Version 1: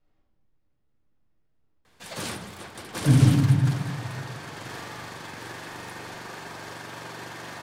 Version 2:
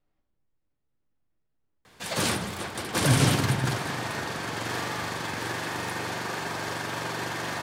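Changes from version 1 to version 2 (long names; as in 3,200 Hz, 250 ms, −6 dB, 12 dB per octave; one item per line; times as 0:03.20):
speech: send −9.0 dB
background +7.0 dB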